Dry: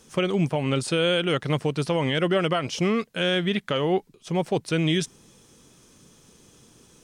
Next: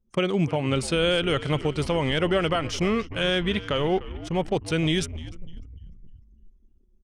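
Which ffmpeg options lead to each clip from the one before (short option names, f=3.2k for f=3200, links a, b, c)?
-filter_complex "[0:a]asplit=8[a][b][c][d][e][f][g][h];[b]adelay=299,afreqshift=-75,volume=-16dB[i];[c]adelay=598,afreqshift=-150,volume=-19.7dB[j];[d]adelay=897,afreqshift=-225,volume=-23.5dB[k];[e]adelay=1196,afreqshift=-300,volume=-27.2dB[l];[f]adelay=1495,afreqshift=-375,volume=-31dB[m];[g]adelay=1794,afreqshift=-450,volume=-34.7dB[n];[h]adelay=2093,afreqshift=-525,volume=-38.5dB[o];[a][i][j][k][l][m][n][o]amix=inputs=8:normalize=0,anlmdn=0.631,asubboost=boost=2.5:cutoff=97"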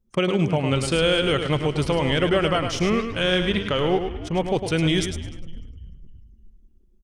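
-af "aecho=1:1:105|210|315:0.422|0.0886|0.0186,volume=2dB"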